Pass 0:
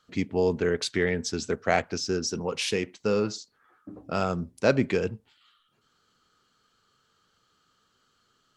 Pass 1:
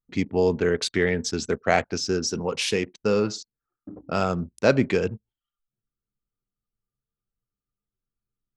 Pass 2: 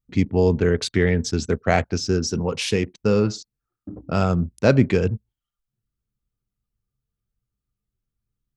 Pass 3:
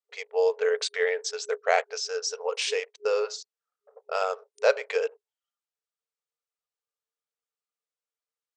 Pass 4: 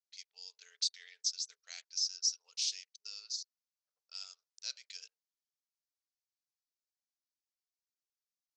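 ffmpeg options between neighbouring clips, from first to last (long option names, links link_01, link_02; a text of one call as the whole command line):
ffmpeg -i in.wav -af "anlmdn=0.0398,volume=3dB" out.wav
ffmpeg -i in.wav -af "equalizer=frequency=65:width=0.4:gain=12.5" out.wav
ffmpeg -i in.wav -af "afftfilt=real='re*between(b*sr/4096,410,9100)':imag='im*between(b*sr/4096,410,9100)':win_size=4096:overlap=0.75,volume=-2.5dB" out.wav
ffmpeg -i in.wav -af "asuperpass=centerf=5300:order=4:qfactor=2" out.wav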